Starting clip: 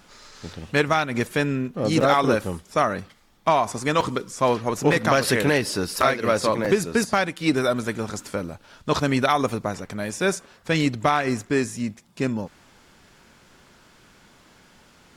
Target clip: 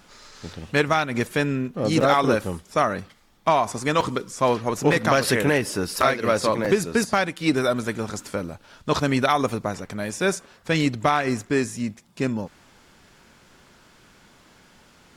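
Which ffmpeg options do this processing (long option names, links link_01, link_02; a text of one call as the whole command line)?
ffmpeg -i in.wav -filter_complex "[0:a]asettb=1/sr,asplit=3[link_01][link_02][link_03];[link_01]atrim=end=5.354[link_04];[link_02]atrim=start=5.35:end=5.86,asetpts=PTS-STARTPTS,afade=type=in:duration=0.004:curve=qsin,afade=type=out:start_time=0.506:duration=0.004:curve=qsin,equalizer=frequency=4300:width_type=o:width=0.49:gain=-9[link_05];[link_03]atrim=start=5.856[link_06];[link_04][link_05]acrossfade=duration=0.004:curve1=hsin:curve2=qsin[link_07];[link_07][link_06]acrossfade=duration=0.004:curve1=qsin:curve2=hsin" out.wav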